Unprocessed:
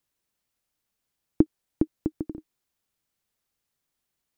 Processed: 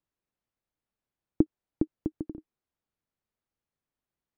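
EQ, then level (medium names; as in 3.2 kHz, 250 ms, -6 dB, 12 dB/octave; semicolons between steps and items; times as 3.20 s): low-pass 1.2 kHz 6 dB/octave; -3.0 dB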